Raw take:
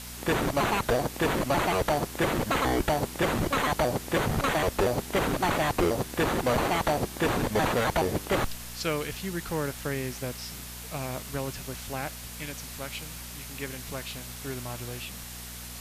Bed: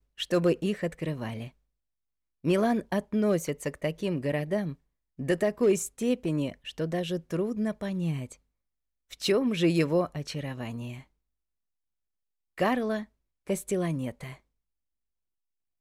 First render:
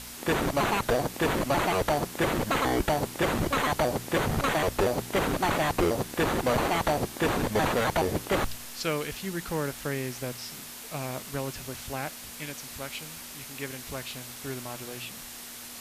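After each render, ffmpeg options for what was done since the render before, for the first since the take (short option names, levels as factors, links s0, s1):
-af "bandreject=f=60:t=h:w=4,bandreject=f=120:t=h:w=4,bandreject=f=180:t=h:w=4"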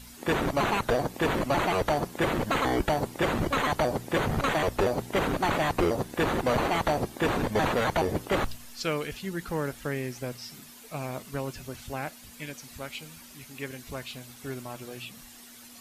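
-af "afftdn=nr=10:nf=-43"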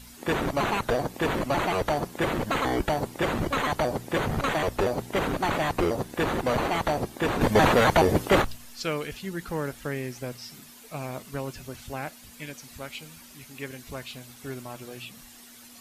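-filter_complex "[0:a]asettb=1/sr,asplit=3[s0][s1][s2];[s0]atrim=end=7.414[s3];[s1]atrim=start=7.41:end=8.42,asetpts=PTS-STARTPTS,afade=t=in:d=0.004:c=qsin,afade=t=out:st=1.006:d=0.004:c=qsin,acontrast=71[s4];[s2]atrim=start=8.416[s5];[s3][s4]acrossfade=d=0.004:c1=hsin:c2=qsin[s6];[s6][s5]acrossfade=d=0.004:c1=qsin:c2=hsin"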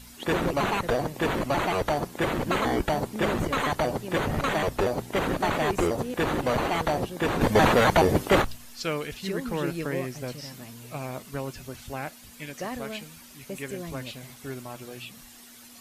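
-filter_complex "[1:a]volume=0.376[s0];[0:a][s0]amix=inputs=2:normalize=0"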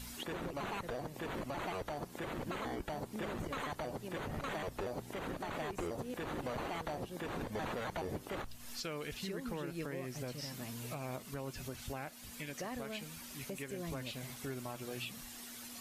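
-af "acompressor=threshold=0.0178:ratio=3,alimiter=level_in=2.37:limit=0.0631:level=0:latency=1:release=396,volume=0.422"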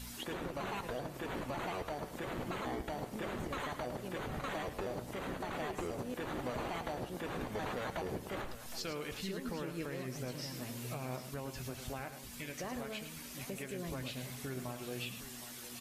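-filter_complex "[0:a]asplit=2[s0][s1];[s1]adelay=16,volume=0.237[s2];[s0][s2]amix=inputs=2:normalize=0,aecho=1:1:107|762:0.316|0.211"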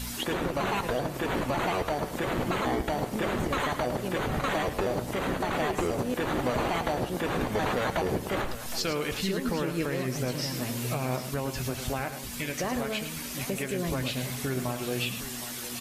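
-af "volume=3.55"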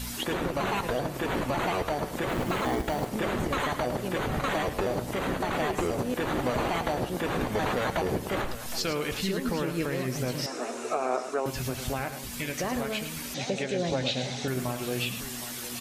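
-filter_complex "[0:a]asettb=1/sr,asplit=3[s0][s1][s2];[s0]atrim=end=2.294[s3];[s1]atrim=start=2.29:end=3.09,asetpts=PTS-STARTPTS,afade=t=in:d=0.004:c=qsin,afade=t=out:st=0.796:d=0.004:c=qsin,acrusher=bits=5:mode=log:mix=0:aa=0.000001[s4];[s2]atrim=start=3.086[s5];[s3][s4]acrossfade=d=0.004:c1=hsin:c2=qsin[s6];[s6][s5]acrossfade=d=0.004:c1=qsin:c2=hsin,asettb=1/sr,asplit=3[s7][s8][s9];[s7]atrim=end=10.464[s10];[s8]atrim=start=10.46:end=11.46,asetpts=PTS-STARTPTS,afade=t=in:d=0.004:c=qsin,afade=t=out:st=0.996:d=0.004:c=qsin,highpass=f=290:w=0.5412,highpass=f=290:w=1.3066,equalizer=f=420:t=q:w=4:g=7,equalizer=f=710:t=q:w=4:g=8,equalizer=f=1300:t=q:w=4:g=9,equalizer=f=2000:t=q:w=4:g=-4,equalizer=f=3200:t=q:w=4:g=-9,equalizer=f=4600:t=q:w=4:g=-8,lowpass=f=8100:w=0.5412,lowpass=f=8100:w=1.3066[s11];[s9]atrim=start=11.456[s12];[s10][s11]acrossfade=d=0.004:c1=hsin:c2=qsin[s13];[s13][s12]acrossfade=d=0.004:c1=qsin:c2=hsin,asettb=1/sr,asplit=3[s14][s15][s16];[s14]atrim=end=13.344[s17];[s15]atrim=start=13.34:end=14.48,asetpts=PTS-STARTPTS,afade=t=in:d=0.004:c=qsin,afade=t=out:st=1.136:d=0.004:c=qsin,highpass=100,equalizer=f=530:t=q:w=4:g=7,equalizer=f=780:t=q:w=4:g=8,equalizer=f=1100:t=q:w=4:g=-7,equalizer=f=3800:t=q:w=4:g=8,equalizer=f=6100:t=q:w=4:g=4,lowpass=f=6800:w=0.5412,lowpass=f=6800:w=1.3066[s18];[s16]atrim=start=14.476[s19];[s17][s18]acrossfade=d=0.004:c1=hsin:c2=qsin[s20];[s20][s19]acrossfade=d=0.004:c1=qsin:c2=hsin"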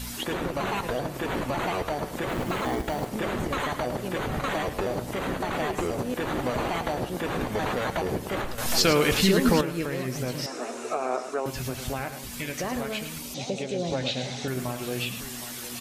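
-filter_complex "[0:a]asettb=1/sr,asplit=3[s0][s1][s2];[s0]atrim=end=13.184[s3];[s1]atrim=start=13.18:end=13.91,asetpts=PTS-STARTPTS,afade=t=in:d=0.004:c=qsin,afade=t=out:st=0.726:d=0.004:c=qsin,equalizer=f=1700:t=o:w=0.62:g=-12.5[s4];[s2]atrim=start=13.906[s5];[s3][s4]acrossfade=d=0.004:c1=hsin:c2=qsin[s6];[s6][s5]acrossfade=d=0.004:c1=qsin:c2=hsin,asplit=3[s7][s8][s9];[s7]atrim=end=8.582[s10];[s8]atrim=start=8.578:end=9.612,asetpts=PTS-STARTPTS,volume=2.82[s11];[s9]atrim=start=9.608[s12];[s10][s11]acrossfade=d=0.004:c1=hsin:c2=hsin[s13];[s13][s12]acrossfade=d=0.004:c1=hsin:c2=hsin"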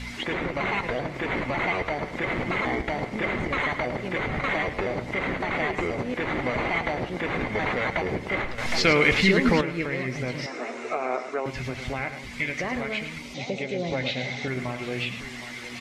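-af "lowpass=4400,equalizer=f=2100:t=o:w=0.25:g=15"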